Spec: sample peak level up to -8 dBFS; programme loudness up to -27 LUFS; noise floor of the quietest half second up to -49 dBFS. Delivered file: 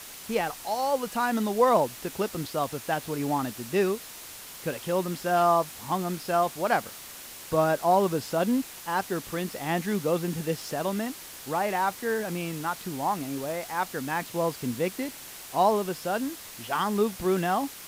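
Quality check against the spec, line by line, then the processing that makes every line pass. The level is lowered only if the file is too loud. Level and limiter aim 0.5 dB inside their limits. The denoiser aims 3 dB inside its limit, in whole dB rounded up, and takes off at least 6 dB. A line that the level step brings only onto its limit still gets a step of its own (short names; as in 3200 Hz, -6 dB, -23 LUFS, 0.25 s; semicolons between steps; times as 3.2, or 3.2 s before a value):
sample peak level -10.0 dBFS: OK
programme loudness -28.0 LUFS: OK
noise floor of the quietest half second -43 dBFS: fail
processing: denoiser 9 dB, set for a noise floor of -43 dBFS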